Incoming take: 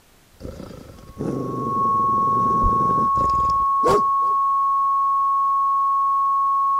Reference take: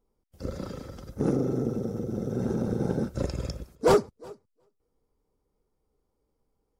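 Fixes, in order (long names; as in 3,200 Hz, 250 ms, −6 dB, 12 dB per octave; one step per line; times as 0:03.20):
notch filter 1,100 Hz, Q 30
high-pass at the plosives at 0:02.62
downward expander −32 dBFS, range −21 dB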